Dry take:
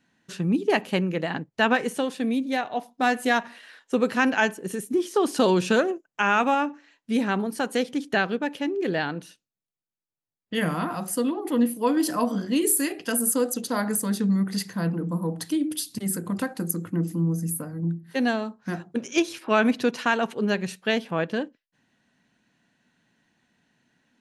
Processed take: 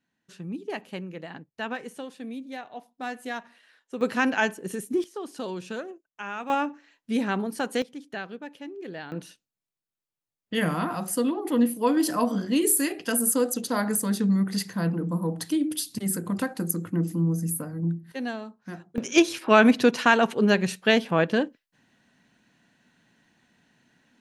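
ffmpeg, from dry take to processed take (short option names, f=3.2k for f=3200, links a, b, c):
-af "asetnsamples=n=441:p=0,asendcmd='4.01 volume volume -2dB;5.04 volume volume -13.5dB;6.5 volume volume -2dB;7.82 volume volume -12dB;9.12 volume volume 0dB;18.12 volume volume -8dB;18.98 volume volume 4dB',volume=-11.5dB"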